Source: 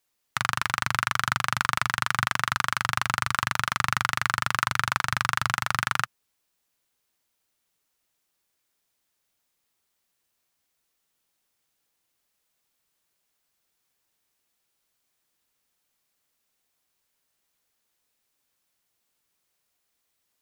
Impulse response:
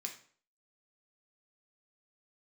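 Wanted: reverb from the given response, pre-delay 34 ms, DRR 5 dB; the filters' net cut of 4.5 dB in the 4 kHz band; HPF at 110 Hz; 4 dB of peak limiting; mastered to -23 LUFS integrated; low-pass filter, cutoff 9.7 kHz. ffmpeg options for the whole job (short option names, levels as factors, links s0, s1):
-filter_complex "[0:a]highpass=110,lowpass=9700,equalizer=f=4000:t=o:g=-6,alimiter=limit=0.335:level=0:latency=1,asplit=2[s0][s1];[1:a]atrim=start_sample=2205,adelay=34[s2];[s1][s2]afir=irnorm=-1:irlink=0,volume=0.708[s3];[s0][s3]amix=inputs=2:normalize=0,volume=1.78"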